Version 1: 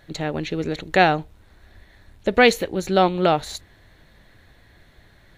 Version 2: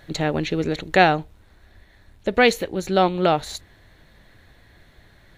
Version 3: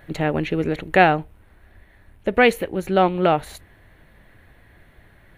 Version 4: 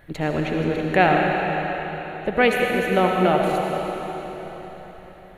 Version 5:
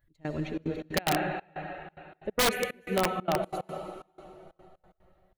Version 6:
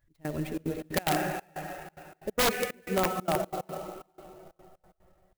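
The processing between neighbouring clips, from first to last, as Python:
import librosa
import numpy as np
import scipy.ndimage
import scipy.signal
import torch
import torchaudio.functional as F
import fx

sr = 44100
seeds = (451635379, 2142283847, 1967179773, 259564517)

y1 = fx.rider(x, sr, range_db=5, speed_s=2.0)
y2 = fx.band_shelf(y1, sr, hz=5200.0, db=-11.0, octaves=1.3)
y2 = y2 * 10.0 ** (1.0 / 20.0)
y3 = fx.rev_freeverb(y2, sr, rt60_s=4.3, hf_ratio=0.95, predelay_ms=40, drr_db=-0.5)
y3 = y3 * 10.0 ** (-3.0 / 20.0)
y4 = fx.bin_expand(y3, sr, power=1.5)
y4 = fx.step_gate(y4, sr, bpm=183, pattern='x..xxxx.xx.x.xxx', floor_db=-24.0, edge_ms=4.5)
y4 = (np.mod(10.0 ** (12.0 / 20.0) * y4 + 1.0, 2.0) - 1.0) / 10.0 ** (12.0 / 20.0)
y4 = y4 * 10.0 ** (-5.5 / 20.0)
y5 = fx.clock_jitter(y4, sr, seeds[0], jitter_ms=0.036)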